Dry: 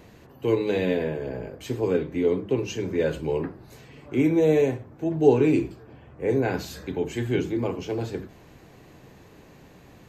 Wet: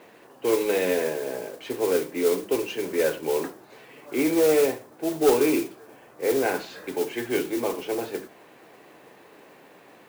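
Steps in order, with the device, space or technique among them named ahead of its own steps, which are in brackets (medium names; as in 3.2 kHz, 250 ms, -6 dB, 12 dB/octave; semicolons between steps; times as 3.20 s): carbon microphone (band-pass 390–3200 Hz; saturation -15.5 dBFS, distortion -18 dB; modulation noise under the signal 14 dB); trim +4 dB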